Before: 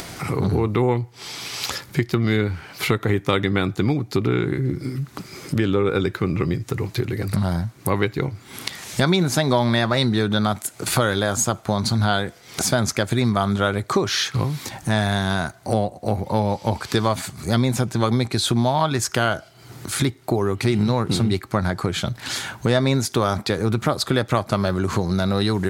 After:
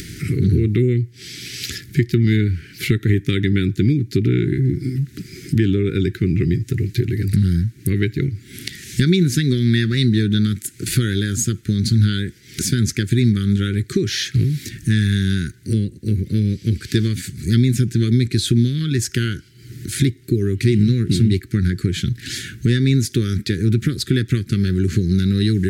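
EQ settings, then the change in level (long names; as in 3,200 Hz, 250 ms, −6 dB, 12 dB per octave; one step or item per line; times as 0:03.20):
elliptic band-stop filter 370–1,700 Hz, stop band 60 dB
low-shelf EQ 280 Hz +8 dB
0.0 dB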